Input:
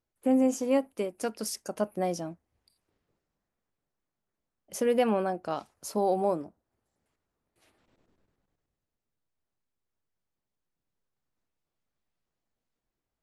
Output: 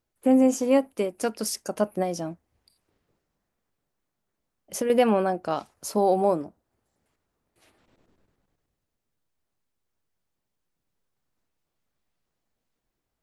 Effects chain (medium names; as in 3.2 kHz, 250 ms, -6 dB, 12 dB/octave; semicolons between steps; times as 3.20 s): 2.02–4.90 s: compression, threshold -29 dBFS, peak gain reduction 7.5 dB; trim +5 dB